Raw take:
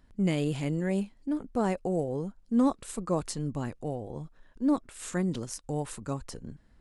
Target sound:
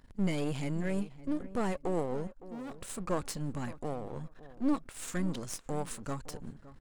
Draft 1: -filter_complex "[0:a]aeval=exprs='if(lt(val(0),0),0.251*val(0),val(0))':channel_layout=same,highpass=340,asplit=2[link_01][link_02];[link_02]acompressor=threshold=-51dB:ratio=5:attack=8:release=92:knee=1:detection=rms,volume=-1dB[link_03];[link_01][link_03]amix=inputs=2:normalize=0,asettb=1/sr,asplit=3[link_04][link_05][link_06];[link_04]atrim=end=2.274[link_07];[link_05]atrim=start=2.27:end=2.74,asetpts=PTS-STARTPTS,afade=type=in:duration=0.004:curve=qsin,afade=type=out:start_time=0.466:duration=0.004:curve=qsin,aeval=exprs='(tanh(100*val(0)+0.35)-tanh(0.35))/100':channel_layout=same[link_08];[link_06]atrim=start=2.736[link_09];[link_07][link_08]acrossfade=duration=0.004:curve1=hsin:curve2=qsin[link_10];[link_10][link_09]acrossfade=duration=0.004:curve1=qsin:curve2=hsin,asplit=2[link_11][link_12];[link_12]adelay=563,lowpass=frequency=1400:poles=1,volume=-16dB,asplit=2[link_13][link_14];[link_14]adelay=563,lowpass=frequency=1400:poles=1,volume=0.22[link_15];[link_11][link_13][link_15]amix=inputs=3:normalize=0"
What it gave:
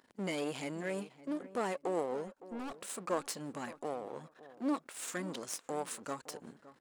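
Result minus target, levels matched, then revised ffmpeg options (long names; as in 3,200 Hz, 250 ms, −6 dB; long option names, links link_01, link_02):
250 Hz band −2.5 dB
-filter_complex "[0:a]aeval=exprs='if(lt(val(0),0),0.251*val(0),val(0))':channel_layout=same,asplit=2[link_01][link_02];[link_02]acompressor=threshold=-51dB:ratio=5:attack=8:release=92:knee=1:detection=rms,volume=-1dB[link_03];[link_01][link_03]amix=inputs=2:normalize=0,asettb=1/sr,asplit=3[link_04][link_05][link_06];[link_04]atrim=end=2.274[link_07];[link_05]atrim=start=2.27:end=2.74,asetpts=PTS-STARTPTS,afade=type=in:duration=0.004:curve=qsin,afade=type=out:start_time=0.466:duration=0.004:curve=qsin,aeval=exprs='(tanh(100*val(0)+0.35)-tanh(0.35))/100':channel_layout=same[link_08];[link_06]atrim=start=2.736[link_09];[link_07][link_08]acrossfade=duration=0.004:curve1=hsin:curve2=qsin[link_10];[link_10][link_09]acrossfade=duration=0.004:curve1=qsin:curve2=hsin,asplit=2[link_11][link_12];[link_12]adelay=563,lowpass=frequency=1400:poles=1,volume=-16dB,asplit=2[link_13][link_14];[link_14]adelay=563,lowpass=frequency=1400:poles=1,volume=0.22[link_15];[link_11][link_13][link_15]amix=inputs=3:normalize=0"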